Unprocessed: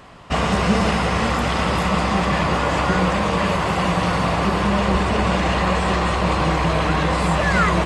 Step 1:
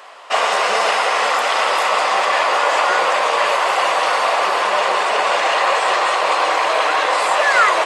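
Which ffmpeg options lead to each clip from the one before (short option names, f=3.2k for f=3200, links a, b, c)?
-af "highpass=f=520:w=0.5412,highpass=f=520:w=1.3066,volume=6dB"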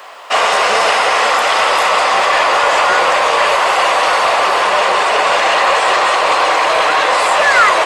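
-filter_complex "[0:a]acrossover=split=660|850|3300[a][b][c][d];[b]asoftclip=type=hard:threshold=-27.5dB[e];[a][e][c][d]amix=inputs=4:normalize=0,acrusher=bits=9:mix=0:aa=0.000001,acontrast=35"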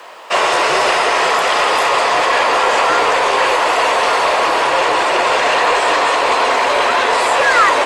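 -af "afreqshift=-64,volume=-1.5dB"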